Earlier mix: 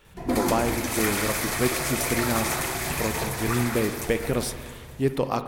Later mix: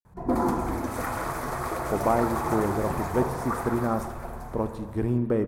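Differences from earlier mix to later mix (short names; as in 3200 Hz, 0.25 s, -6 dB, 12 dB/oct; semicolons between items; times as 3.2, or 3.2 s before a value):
speech: entry +1.55 s; master: add resonant high shelf 1700 Hz -13.5 dB, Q 1.5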